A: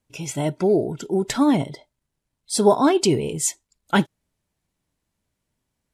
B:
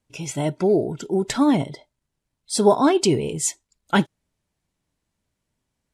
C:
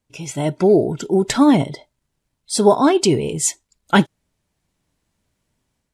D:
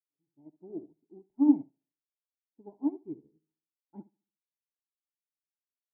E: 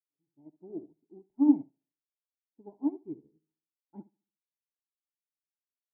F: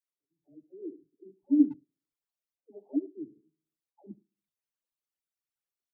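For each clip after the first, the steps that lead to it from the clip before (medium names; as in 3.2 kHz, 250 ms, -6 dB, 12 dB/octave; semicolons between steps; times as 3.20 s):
low-pass 11 kHz 12 dB/octave
level rider gain up to 6.5 dB
cascade formant filter u; on a send: feedback delay 70 ms, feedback 43%, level -8 dB; on the sum: upward expansion 2.5:1, over -35 dBFS; trim -5.5 dB
no audible change
resonances exaggerated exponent 3; phase dispersion lows, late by 132 ms, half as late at 630 Hz; speakerphone echo 110 ms, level -23 dB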